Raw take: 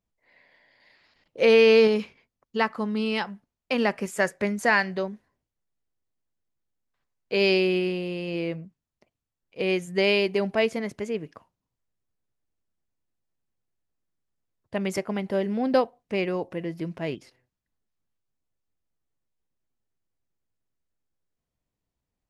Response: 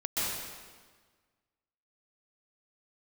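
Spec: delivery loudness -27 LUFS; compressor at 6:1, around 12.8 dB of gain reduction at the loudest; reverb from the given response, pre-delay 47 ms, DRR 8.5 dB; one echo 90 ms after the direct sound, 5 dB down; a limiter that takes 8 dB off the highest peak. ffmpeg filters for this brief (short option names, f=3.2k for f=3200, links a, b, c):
-filter_complex "[0:a]acompressor=threshold=-28dB:ratio=6,alimiter=level_in=1dB:limit=-24dB:level=0:latency=1,volume=-1dB,aecho=1:1:90:0.562,asplit=2[a][b];[1:a]atrim=start_sample=2205,adelay=47[c];[b][c]afir=irnorm=-1:irlink=0,volume=-16.5dB[d];[a][d]amix=inputs=2:normalize=0,volume=7dB"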